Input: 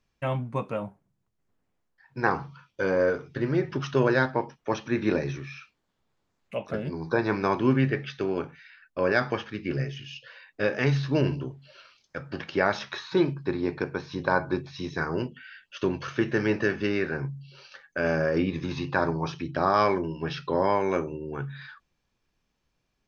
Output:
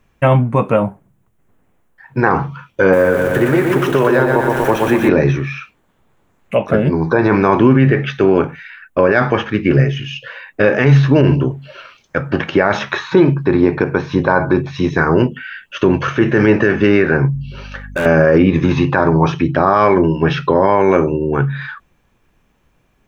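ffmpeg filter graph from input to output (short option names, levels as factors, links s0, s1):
-filter_complex "[0:a]asettb=1/sr,asplit=3[s0][s1][s2];[s0]atrim=end=2.934[s3];[s1]atrim=start=2.93:end=5.09,asetpts=PTS-STARTPTS,afade=t=in:d=0.004:c=qsin,afade=t=out:st=2.156:d=0.004:c=qsin,aeval=exprs='val(0)+0.5*0.0168*sgn(val(0))':c=same,aecho=1:1:120|240|360|480|600|720|840|960:0.562|0.332|0.196|0.115|0.0681|0.0402|0.0237|0.014,atrim=end_sample=95256,acrossover=split=310|840[s4][s5][s6];[s4]acompressor=threshold=0.0126:ratio=4[s7];[s5]acompressor=threshold=0.0251:ratio=4[s8];[s6]acompressor=threshold=0.0141:ratio=4[s9];[s7][s8][s9]amix=inputs=3:normalize=0[s10];[s2]atrim=start=5.086[s11];[s3][s10]acrossfade=d=0.004:c1=hsin:c2=qsin[s12];[s12][s11]acrossfade=d=0.004:c1=qsin:c2=hsin,asettb=1/sr,asplit=3[s13][s14][s15];[s13]atrim=end=17.344[s16];[s14]atrim=start=17.34:end=18.06,asetpts=PTS-STARTPTS,afade=t=in:d=0.004:c=qsin,afade=t=out:st=0.716:d=0.004:c=qsin,aeval=exprs='val(0)+0.00355*(sin(2*PI*50*n/s)+sin(2*PI*2*50*n/s)/2+sin(2*PI*3*50*n/s)/3+sin(2*PI*4*50*n/s)/4+sin(2*PI*5*50*n/s)/5)':c=same,asoftclip=type=hard:threshold=0.0251[s17];[s15]atrim=start=18.056[s18];[s16][s17]acrossfade=d=0.004:c1=hsin:c2=qsin[s19];[s19][s18]acrossfade=d=0.004:c1=qsin:c2=hsin,equalizer=f=4800:t=o:w=0.88:g=-14,alimiter=level_in=8.91:limit=0.891:release=50:level=0:latency=1,volume=0.891"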